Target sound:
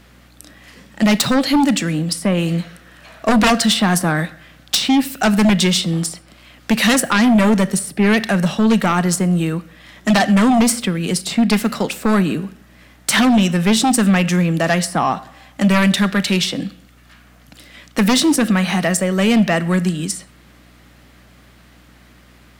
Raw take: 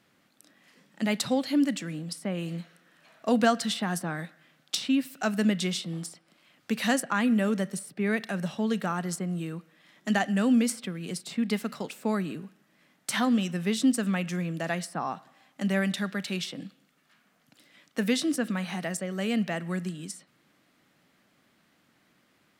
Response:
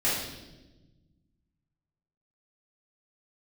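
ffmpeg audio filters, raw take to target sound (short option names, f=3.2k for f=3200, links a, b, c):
-filter_complex "[0:a]aeval=exprs='0.335*sin(PI/2*3.98*val(0)/0.335)':c=same,aeval=exprs='val(0)+0.00355*(sin(2*PI*60*n/s)+sin(2*PI*2*60*n/s)/2+sin(2*PI*3*60*n/s)/3+sin(2*PI*4*60*n/s)/4+sin(2*PI*5*60*n/s)/5)':c=same,asplit=2[a][b];[1:a]atrim=start_sample=2205,atrim=end_sample=6174,highshelf=f=10k:g=10[c];[b][c]afir=irnorm=-1:irlink=0,volume=-30dB[d];[a][d]amix=inputs=2:normalize=0"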